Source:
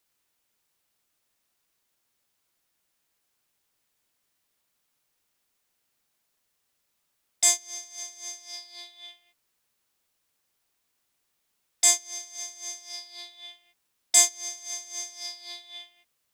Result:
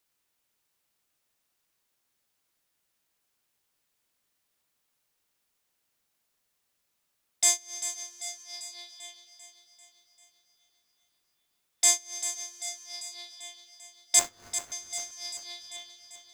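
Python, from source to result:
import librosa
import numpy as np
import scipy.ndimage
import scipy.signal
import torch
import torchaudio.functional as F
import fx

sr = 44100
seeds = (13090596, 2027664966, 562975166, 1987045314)

y = fx.median_filter(x, sr, points=15, at=(14.19, 14.72))
y = fx.echo_feedback(y, sr, ms=393, feedback_pct=58, wet_db=-11.0)
y = F.gain(torch.from_numpy(y), -2.0).numpy()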